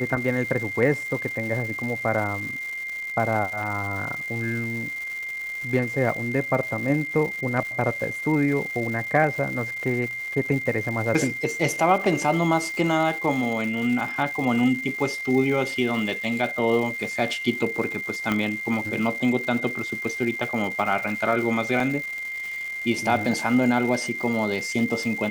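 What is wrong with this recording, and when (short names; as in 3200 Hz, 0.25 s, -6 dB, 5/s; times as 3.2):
crackle 380/s -32 dBFS
tone 2100 Hz -29 dBFS
18.32 pop -11 dBFS
21.8 gap 2.7 ms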